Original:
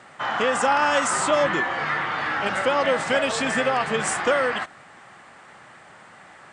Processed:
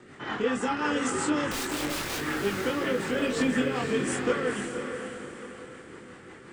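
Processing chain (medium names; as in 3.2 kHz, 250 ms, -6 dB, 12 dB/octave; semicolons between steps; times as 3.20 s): resonant low shelf 490 Hz +7 dB, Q 3; in parallel at +2 dB: compression, threshold -29 dBFS, peak gain reduction 15.5 dB; on the sum: rotary cabinet horn 5.5 Hz; 1.51–2.19 s: integer overflow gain 20 dB; chorus voices 6, 0.39 Hz, delay 22 ms, depth 2.3 ms; on a send: echo that smears into a reverb 501 ms, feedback 43%, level -6.5 dB; on the sum: trim -5.5 dB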